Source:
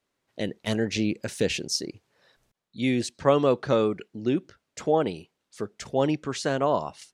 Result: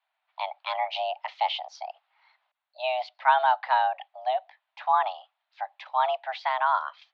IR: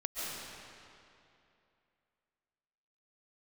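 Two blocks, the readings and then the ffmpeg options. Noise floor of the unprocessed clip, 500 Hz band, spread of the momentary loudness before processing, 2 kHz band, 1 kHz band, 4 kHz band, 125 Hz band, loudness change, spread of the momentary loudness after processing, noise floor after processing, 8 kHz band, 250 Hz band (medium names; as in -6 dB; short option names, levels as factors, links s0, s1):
-81 dBFS, -7.5 dB, 14 LU, +3.5 dB, +9.0 dB, -1.5 dB, under -40 dB, -0.5 dB, 16 LU, -83 dBFS, under -20 dB, under -40 dB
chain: -af "highpass=f=280:t=q:w=0.5412,highpass=f=280:t=q:w=1.307,lowpass=f=3500:t=q:w=0.5176,lowpass=f=3500:t=q:w=0.7071,lowpass=f=3500:t=q:w=1.932,afreqshift=380"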